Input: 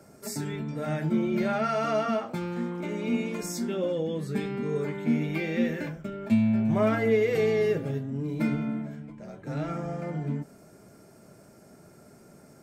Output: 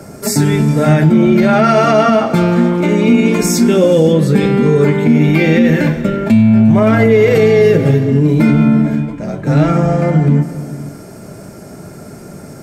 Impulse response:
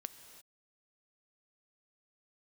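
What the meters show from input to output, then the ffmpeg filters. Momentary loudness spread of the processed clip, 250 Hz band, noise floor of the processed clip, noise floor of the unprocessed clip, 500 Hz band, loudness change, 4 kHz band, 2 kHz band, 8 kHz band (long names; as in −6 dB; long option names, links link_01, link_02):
6 LU, +17.5 dB, −33 dBFS, −54 dBFS, +16.5 dB, +17.5 dB, +17.0 dB, +16.0 dB, +18.5 dB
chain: -filter_complex "[0:a]asplit=2[link_01][link_02];[1:a]atrim=start_sample=2205,asetrate=27783,aresample=44100,lowshelf=frequency=230:gain=8.5[link_03];[link_02][link_03]afir=irnorm=-1:irlink=0,volume=1dB[link_04];[link_01][link_04]amix=inputs=2:normalize=0,alimiter=level_in=14dB:limit=-1dB:release=50:level=0:latency=1,volume=-1dB"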